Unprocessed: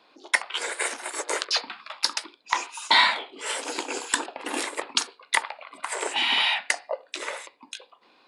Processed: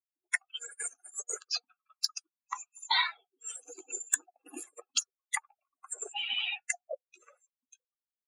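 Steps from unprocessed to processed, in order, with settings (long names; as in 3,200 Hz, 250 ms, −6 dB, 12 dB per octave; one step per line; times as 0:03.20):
spectral dynamics exaggerated over time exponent 3
high-pass filter 820 Hz 6 dB per octave
parametric band 7,200 Hz +14 dB 0.21 octaves
in parallel at −1 dB: downward compressor, threshold −34 dBFS, peak gain reduction 17.5 dB
on the sum: wave folding −6.5 dBFS
level −5.5 dB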